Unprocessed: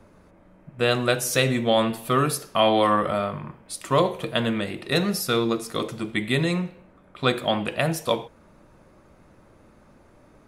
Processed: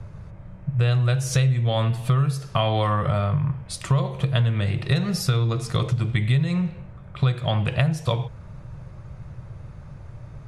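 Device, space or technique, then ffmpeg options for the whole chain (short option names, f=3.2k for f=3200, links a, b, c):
jukebox: -af "lowpass=7.7k,lowshelf=f=180:t=q:w=3:g=12,acompressor=threshold=-23dB:ratio=6,volume=4.5dB"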